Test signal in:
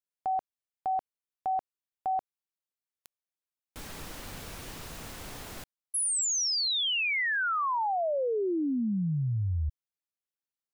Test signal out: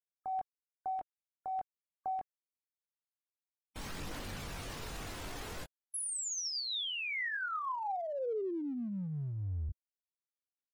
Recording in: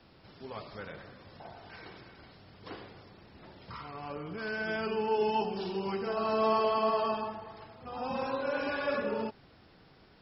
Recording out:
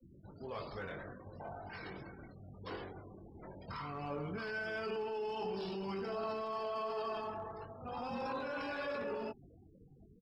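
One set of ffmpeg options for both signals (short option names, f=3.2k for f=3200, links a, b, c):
-filter_complex "[0:a]afftfilt=real='re*gte(hypot(re,im),0.00398)':imag='im*gte(hypot(re,im),0.00398)':win_size=1024:overlap=0.75,asplit=2[a][b];[b]adelay=21,volume=-6dB[c];[a][c]amix=inputs=2:normalize=0,areverse,acompressor=threshold=-37dB:ratio=6:attack=0.14:release=40:knee=6:detection=peak,areverse,aphaser=in_gain=1:out_gain=1:delay=3.2:decay=0.21:speed=0.48:type=triangular,volume=1.5dB"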